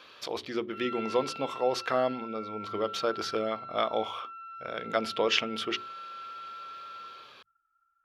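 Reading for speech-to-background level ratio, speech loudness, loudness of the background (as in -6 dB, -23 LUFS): 10.0 dB, -31.5 LUFS, -41.5 LUFS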